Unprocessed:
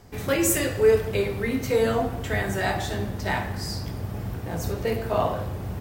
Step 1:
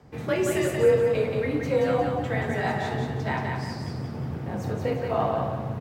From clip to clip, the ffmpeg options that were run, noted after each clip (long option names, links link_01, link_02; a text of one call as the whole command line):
ffmpeg -i in.wav -af "aemphasis=mode=reproduction:type=75kf,afreqshift=35,aecho=1:1:178|356|534|712|890:0.631|0.24|0.0911|0.0346|0.0132,volume=-1.5dB" out.wav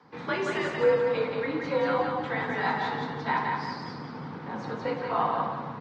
ffmpeg -i in.wav -af "afreqshift=15,highpass=250,equalizer=frequency=370:width_type=q:width=4:gain=-6,equalizer=frequency=630:width_type=q:width=4:gain=-10,equalizer=frequency=990:width_type=q:width=4:gain=8,equalizer=frequency=1400:width_type=q:width=4:gain=4,equalizer=frequency=2700:width_type=q:width=4:gain=-4,equalizer=frequency=4300:width_type=q:width=4:gain=3,lowpass=frequency=5100:width=0.5412,lowpass=frequency=5100:width=1.3066" -ar 48000 -c:a aac -b:a 32k out.aac